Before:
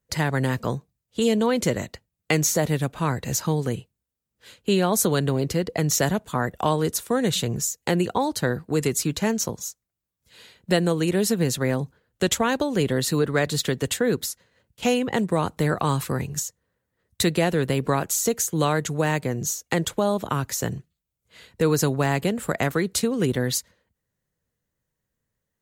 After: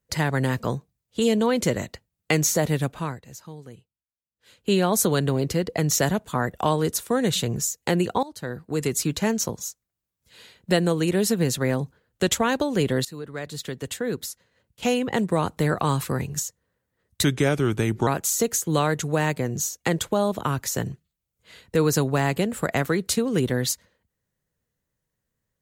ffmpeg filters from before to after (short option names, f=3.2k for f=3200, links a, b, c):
-filter_complex "[0:a]asplit=7[a][b][c][d][e][f][g];[a]atrim=end=3.22,asetpts=PTS-STARTPTS,afade=t=out:st=2.88:d=0.34:silence=0.141254[h];[b]atrim=start=3.22:end=4.38,asetpts=PTS-STARTPTS,volume=-17dB[i];[c]atrim=start=4.38:end=8.23,asetpts=PTS-STARTPTS,afade=t=in:d=0.34:silence=0.141254,afade=t=out:st=3.846:d=0.004:c=hsin:silence=0.11885[j];[d]atrim=start=8.23:end=13.05,asetpts=PTS-STARTPTS,afade=t=in:d=0.8:silence=0.11885,afade=t=out:st=4.816:d=0.004:c=hsin:silence=0.141254[k];[e]atrim=start=13.05:end=17.244,asetpts=PTS-STARTPTS,afade=t=in:d=2.19:silence=0.141254[l];[f]atrim=start=17.24:end=17.93,asetpts=PTS-STARTPTS,asetrate=36603,aresample=44100,atrim=end_sample=36661,asetpts=PTS-STARTPTS[m];[g]atrim=start=17.926[n];[h][i][j][k][l]concat=n=5:v=0:a=1[o];[o][m]acrossfade=d=0.004:c1=hsin:c2=hsin[p];[p][n]acrossfade=d=0.004:c1=hsin:c2=hsin"